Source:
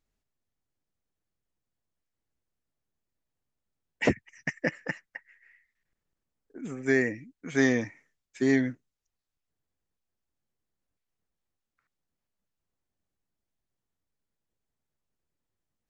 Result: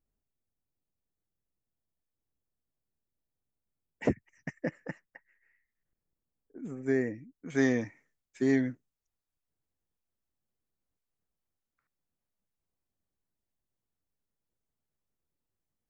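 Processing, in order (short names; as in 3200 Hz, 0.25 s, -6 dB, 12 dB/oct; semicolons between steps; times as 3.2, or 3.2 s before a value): bell 3600 Hz -13.5 dB 2.8 oct, from 7.5 s -5 dB; gain -2 dB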